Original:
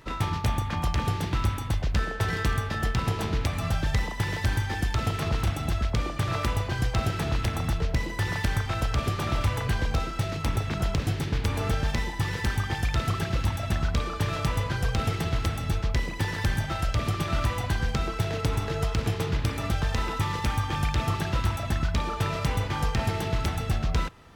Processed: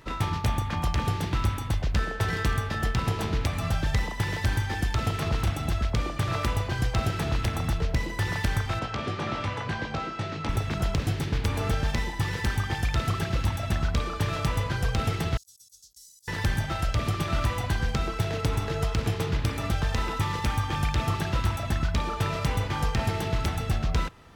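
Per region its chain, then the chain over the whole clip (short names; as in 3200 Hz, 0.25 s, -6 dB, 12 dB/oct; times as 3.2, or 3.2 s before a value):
8.79–10.49 HPF 150 Hz + air absorption 110 m + doubler 19 ms -7.5 dB
15.37–16.28 inverse Chebyshev high-pass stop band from 2500 Hz, stop band 50 dB + negative-ratio compressor -53 dBFS, ratio -0.5
whole clip: dry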